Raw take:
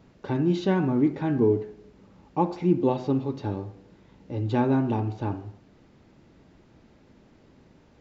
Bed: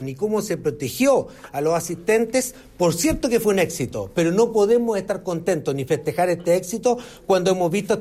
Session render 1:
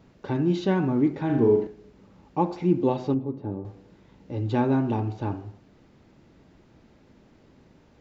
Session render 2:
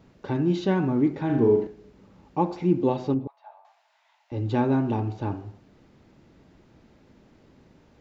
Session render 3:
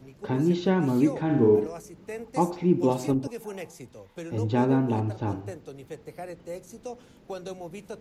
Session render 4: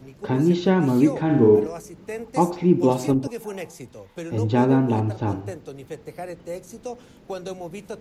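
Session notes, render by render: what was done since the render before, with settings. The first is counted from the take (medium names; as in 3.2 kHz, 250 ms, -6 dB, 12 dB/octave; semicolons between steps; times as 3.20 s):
1.25–1.67 s: flutter echo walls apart 7.3 m, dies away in 0.52 s; 3.14–3.65 s: band-pass filter 240 Hz, Q 0.6
3.27–4.32 s: rippled Chebyshev high-pass 640 Hz, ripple 3 dB
add bed -19 dB
trim +4.5 dB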